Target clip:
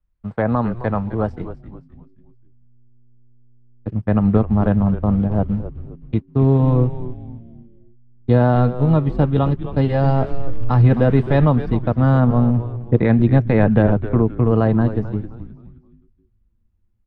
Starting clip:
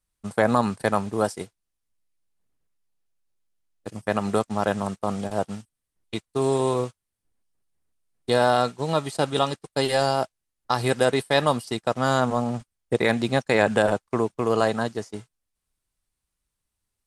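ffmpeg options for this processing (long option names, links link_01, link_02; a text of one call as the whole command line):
ffmpeg -i in.wav -filter_complex "[0:a]asettb=1/sr,asplit=3[link_01][link_02][link_03];[link_01]atrim=end=10.044[link_04];[link_02]atrim=start=10.04:end=11.5,asetpts=PTS-STARTPTS,afade=type=in:duration=0.004:curve=qsin,afade=type=out:start_time=1.456:duration=0.004:curve=qsin,aeval=exprs='val(0)+0.5*0.0282*sgn(val(0))':channel_layout=same[link_05];[link_03]atrim=start=11.496[link_06];[link_04][link_05]acrossfade=duration=0.004:curve1=hsin:curve2=qsin[link_07];[link_07][link_06]acrossfade=duration=0.004:curve1=qsin:curve2=hsin,lowpass=2400,aemphasis=mode=reproduction:type=bsi,bandreject=frequency=390:width=12,asplit=5[link_08][link_09][link_10][link_11][link_12];[link_09]adelay=262,afreqshift=-120,volume=-12dB[link_13];[link_10]adelay=524,afreqshift=-240,volume=-20.4dB[link_14];[link_11]adelay=786,afreqshift=-360,volume=-28.8dB[link_15];[link_12]adelay=1048,afreqshift=-480,volume=-37.2dB[link_16];[link_08][link_13][link_14][link_15][link_16]amix=inputs=5:normalize=0,acrossover=split=340|1200|1900[link_17][link_18][link_19][link_20];[link_17]dynaudnorm=framelen=210:gausssize=17:maxgain=11.5dB[link_21];[link_21][link_18][link_19][link_20]amix=inputs=4:normalize=0,volume=-1.5dB" out.wav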